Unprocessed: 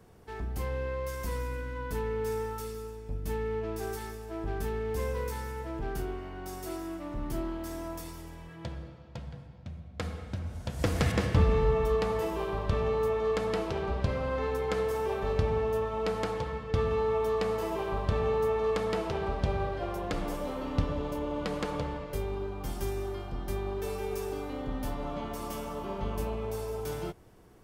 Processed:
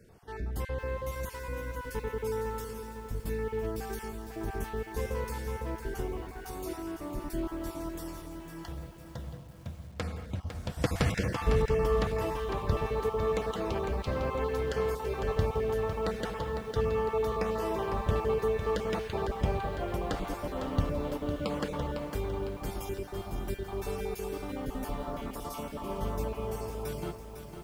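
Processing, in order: random spectral dropouts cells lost 24%; lo-fi delay 0.504 s, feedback 55%, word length 9-bit, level -8 dB

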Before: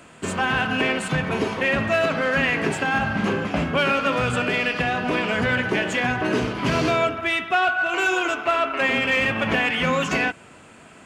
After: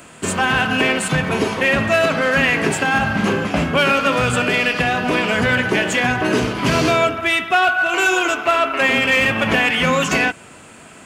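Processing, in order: high shelf 7200 Hz +10.5 dB; gain +4.5 dB

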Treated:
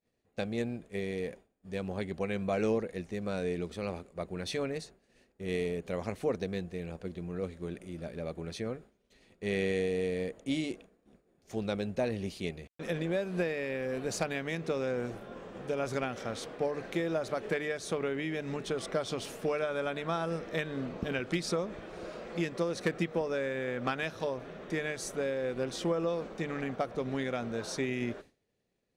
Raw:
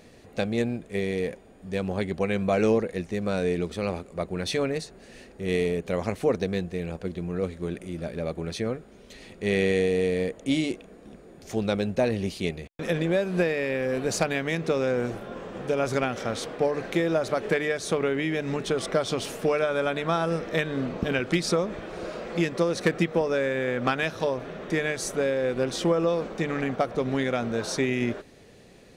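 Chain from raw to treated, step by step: expander -38 dBFS; gain -7.5 dB

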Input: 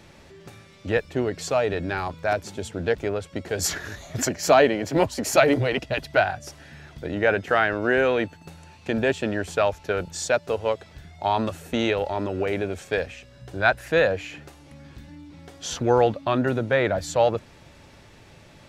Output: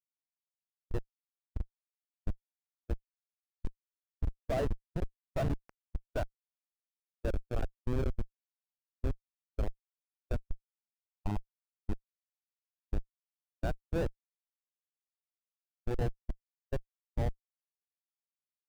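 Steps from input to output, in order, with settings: outdoor echo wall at 16 m, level -16 dB; Schmitt trigger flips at -14.5 dBFS; spectral expander 1.5:1; gain -4 dB

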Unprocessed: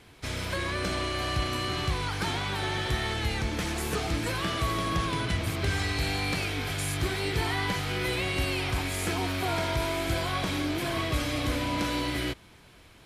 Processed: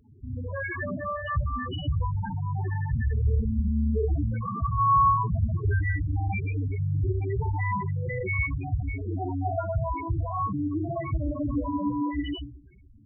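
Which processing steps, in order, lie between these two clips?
CVSD 16 kbps; Schroeder reverb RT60 0.74 s, combs from 28 ms, DRR -3 dB; loudest bins only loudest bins 4; gain +3 dB

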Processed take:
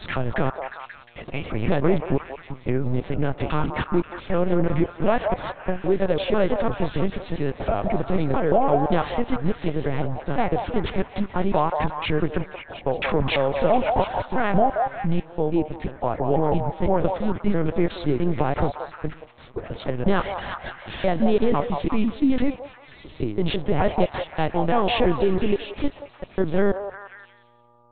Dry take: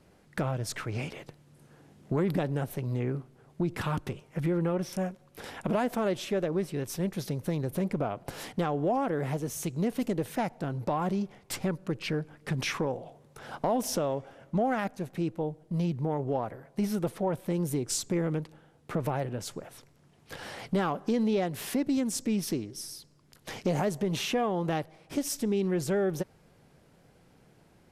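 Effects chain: slices in reverse order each 0.167 s, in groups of 5; gate -54 dBFS, range -31 dB; buzz 120 Hz, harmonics 10, -67 dBFS 0 dB/oct; LPC vocoder at 8 kHz pitch kept; delay with a stepping band-pass 0.178 s, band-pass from 740 Hz, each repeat 0.7 oct, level -3 dB; gain +9 dB

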